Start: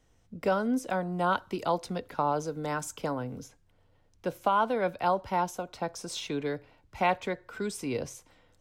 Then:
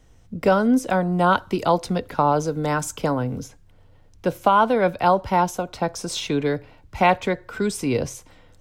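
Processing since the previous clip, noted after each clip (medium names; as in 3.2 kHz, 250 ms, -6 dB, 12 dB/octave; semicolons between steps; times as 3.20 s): bass shelf 170 Hz +6 dB; trim +8.5 dB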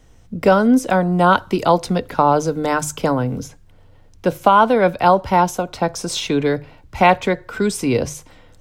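hum notches 50/100/150 Hz; trim +4.5 dB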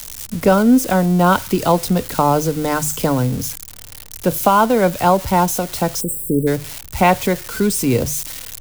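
zero-crossing glitches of -16 dBFS; spectral selection erased 6.01–6.47 s, 590–7600 Hz; bass shelf 250 Hz +8 dB; trim -2 dB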